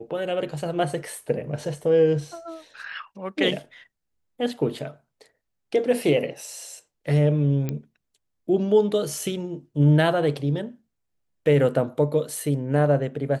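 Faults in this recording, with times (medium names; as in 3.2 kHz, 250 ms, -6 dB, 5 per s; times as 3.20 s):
7.69 s: pop -15 dBFS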